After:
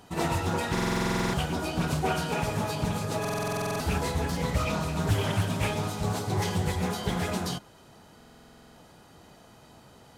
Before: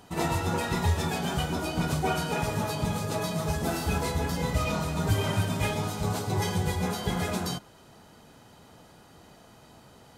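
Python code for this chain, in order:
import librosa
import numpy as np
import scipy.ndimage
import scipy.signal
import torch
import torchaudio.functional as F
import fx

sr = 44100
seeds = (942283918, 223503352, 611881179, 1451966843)

y = fx.buffer_glitch(x, sr, at_s=(0.73, 3.2, 8.16), block=2048, repeats=12)
y = fx.doppler_dist(y, sr, depth_ms=0.33)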